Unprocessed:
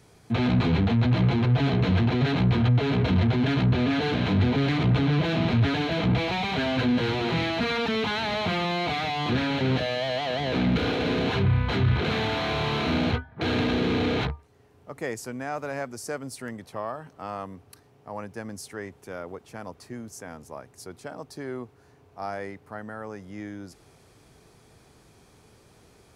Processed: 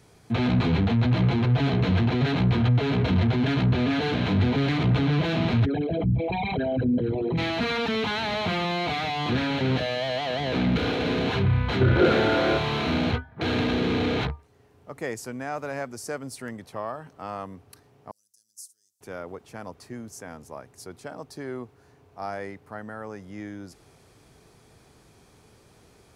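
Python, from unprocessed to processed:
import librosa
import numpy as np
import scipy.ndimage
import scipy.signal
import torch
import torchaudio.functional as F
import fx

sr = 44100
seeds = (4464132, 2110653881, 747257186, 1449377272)

y = fx.envelope_sharpen(x, sr, power=3.0, at=(5.64, 7.37), fade=0.02)
y = fx.small_body(y, sr, hz=(360.0, 530.0, 1400.0), ring_ms=40, db=fx.line((11.8, 17.0), (12.57, 14.0)), at=(11.8, 12.57), fade=0.02)
y = fx.cheby2_highpass(y, sr, hz=2400.0, order=4, stop_db=50, at=(18.11, 19.01))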